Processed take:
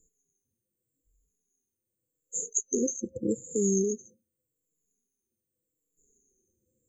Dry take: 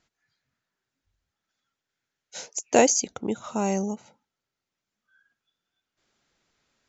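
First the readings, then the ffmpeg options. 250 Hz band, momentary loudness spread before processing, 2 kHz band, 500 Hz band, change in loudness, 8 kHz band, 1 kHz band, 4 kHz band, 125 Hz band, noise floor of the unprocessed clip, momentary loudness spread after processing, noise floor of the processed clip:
-2.0 dB, 20 LU, under -40 dB, -5.0 dB, -5.0 dB, no reading, under -40 dB, under -40 dB, -0.5 dB, under -85 dBFS, 8 LU, under -85 dBFS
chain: -filter_complex "[0:a]afftfilt=real='re*pow(10,23/40*sin(2*PI*(1.5*log(max(b,1)*sr/1024/100)/log(2)-(-0.84)*(pts-256)/sr)))':imag='im*pow(10,23/40*sin(2*PI*(1.5*log(max(b,1)*sr/1024/100)/log(2)-(-0.84)*(pts-256)/sr)))':win_size=1024:overlap=0.75,acrossover=split=590[s0][s1];[s0]alimiter=limit=0.141:level=0:latency=1:release=23[s2];[s1]acompressor=threshold=0.0282:ratio=6[s3];[s2][s3]amix=inputs=2:normalize=0,afftfilt=real='re*(1-between(b*sr/4096,530,6200))':imag='im*(1-between(b*sr/4096,530,6200))':win_size=4096:overlap=0.75,equalizer=f=140:w=0.34:g=-9,volume=1.68"

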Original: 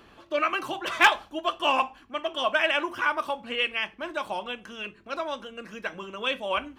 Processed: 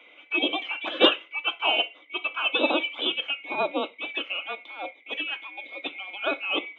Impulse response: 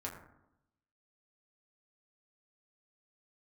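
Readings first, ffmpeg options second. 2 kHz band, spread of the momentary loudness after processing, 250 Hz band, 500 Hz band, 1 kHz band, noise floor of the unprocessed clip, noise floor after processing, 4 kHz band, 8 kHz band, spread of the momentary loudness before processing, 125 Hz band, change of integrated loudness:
-1.0 dB, 14 LU, +5.0 dB, +0.5 dB, -5.0 dB, -55 dBFS, -54 dBFS, +5.5 dB, under -25 dB, 15 LU, no reading, +1.0 dB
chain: -af "afftfilt=real='real(if(lt(b,920),b+92*(1-2*mod(floor(b/92),2)),b),0)':imag='imag(if(lt(b,920),b+92*(1-2*mod(floor(b/92),2)),b),0)':win_size=2048:overlap=0.75,highpass=f=250:w=0.5412,highpass=f=250:w=1.3066,equalizer=f=300:t=q:w=4:g=10,equalizer=f=510:t=q:w=4:g=7,equalizer=f=2000:t=q:w=4:g=4,lowpass=f=3300:w=0.5412,lowpass=f=3300:w=1.3066"

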